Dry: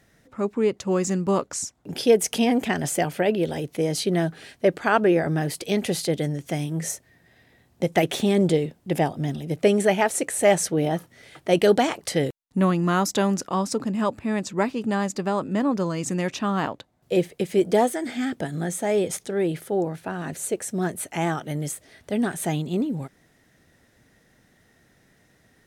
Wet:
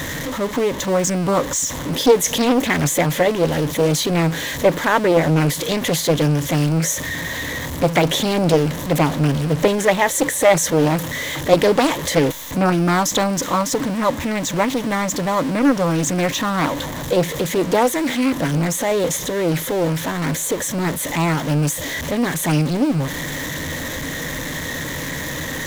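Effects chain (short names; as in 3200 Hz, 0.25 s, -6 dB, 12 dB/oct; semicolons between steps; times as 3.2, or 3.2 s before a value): zero-crossing step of -25 dBFS; ripple EQ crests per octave 1.1, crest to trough 9 dB; Doppler distortion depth 0.53 ms; gain +3 dB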